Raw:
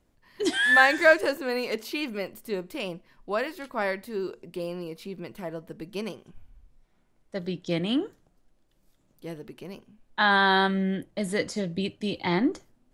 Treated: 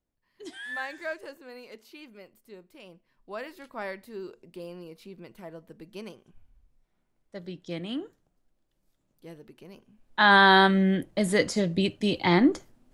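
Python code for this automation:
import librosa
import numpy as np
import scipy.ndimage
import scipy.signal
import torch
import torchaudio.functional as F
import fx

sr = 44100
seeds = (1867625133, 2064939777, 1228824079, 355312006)

y = fx.gain(x, sr, db=fx.line((2.81, -16.5), (3.52, -7.5), (9.71, -7.5), (10.33, 4.0)))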